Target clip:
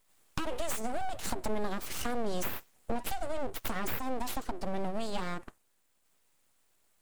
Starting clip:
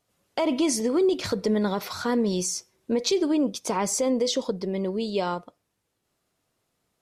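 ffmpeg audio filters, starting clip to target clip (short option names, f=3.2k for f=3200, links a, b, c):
-filter_complex "[0:a]highshelf=f=6.4k:t=q:w=3:g=6,acrossover=split=160[a][b];[b]acompressor=threshold=-33dB:ratio=6[c];[a][c]amix=inputs=2:normalize=0,aeval=exprs='abs(val(0))':c=same,volume=2.5dB"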